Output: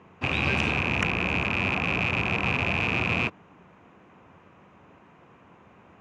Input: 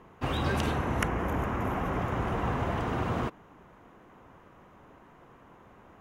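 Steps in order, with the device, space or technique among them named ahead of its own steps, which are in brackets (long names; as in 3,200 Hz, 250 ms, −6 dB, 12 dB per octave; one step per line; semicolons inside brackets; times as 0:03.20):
car door speaker with a rattle (loose part that buzzes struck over −37 dBFS, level −19 dBFS; loudspeaker in its box 81–7,600 Hz, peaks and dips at 89 Hz +5 dB, 180 Hz +5 dB, 2,500 Hz +8 dB)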